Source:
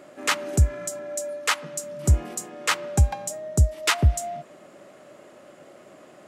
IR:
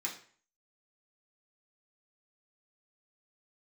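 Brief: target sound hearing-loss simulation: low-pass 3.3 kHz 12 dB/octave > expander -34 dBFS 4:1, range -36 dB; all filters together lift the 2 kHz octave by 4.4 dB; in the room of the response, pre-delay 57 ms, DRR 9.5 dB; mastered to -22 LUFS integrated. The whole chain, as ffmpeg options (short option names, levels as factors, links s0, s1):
-filter_complex "[0:a]equalizer=f=2000:t=o:g=6,asplit=2[s0][s1];[1:a]atrim=start_sample=2205,adelay=57[s2];[s1][s2]afir=irnorm=-1:irlink=0,volume=0.266[s3];[s0][s3]amix=inputs=2:normalize=0,lowpass=3300,agate=range=0.0158:threshold=0.02:ratio=4,volume=1.26"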